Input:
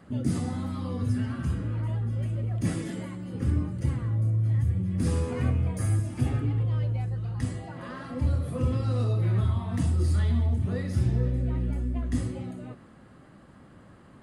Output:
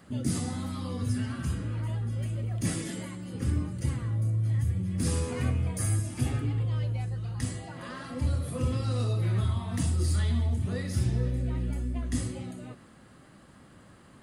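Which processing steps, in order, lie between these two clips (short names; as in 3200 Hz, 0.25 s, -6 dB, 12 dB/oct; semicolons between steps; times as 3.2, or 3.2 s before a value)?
high shelf 2800 Hz +11 dB; gain -2.5 dB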